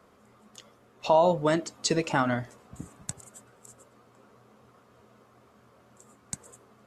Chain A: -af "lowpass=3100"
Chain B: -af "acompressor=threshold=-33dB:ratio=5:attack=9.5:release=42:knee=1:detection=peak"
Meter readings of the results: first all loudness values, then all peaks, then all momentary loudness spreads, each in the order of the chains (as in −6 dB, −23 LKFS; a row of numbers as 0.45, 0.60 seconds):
−26.5, −36.5 LKFS; −10.5, −15.5 dBFS; 22, 19 LU